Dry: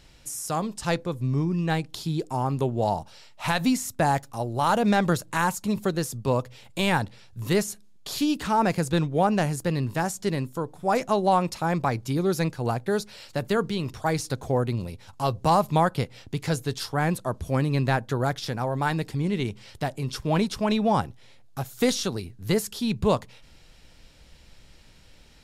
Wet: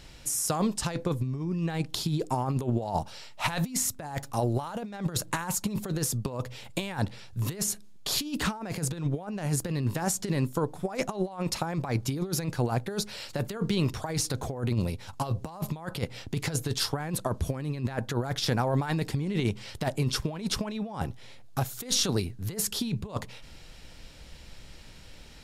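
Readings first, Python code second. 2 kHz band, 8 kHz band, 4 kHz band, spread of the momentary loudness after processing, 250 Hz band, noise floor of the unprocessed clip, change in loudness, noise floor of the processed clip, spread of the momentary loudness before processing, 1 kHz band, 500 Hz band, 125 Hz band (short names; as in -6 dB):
-6.5 dB, +4.0 dB, +0.5 dB, 10 LU, -5.0 dB, -52 dBFS, -4.5 dB, -47 dBFS, 10 LU, -9.5 dB, -7.5 dB, -2.0 dB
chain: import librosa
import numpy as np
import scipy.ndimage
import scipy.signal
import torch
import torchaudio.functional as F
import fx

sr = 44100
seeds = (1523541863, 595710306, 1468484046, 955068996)

y = fx.over_compress(x, sr, threshold_db=-28.0, ratio=-0.5)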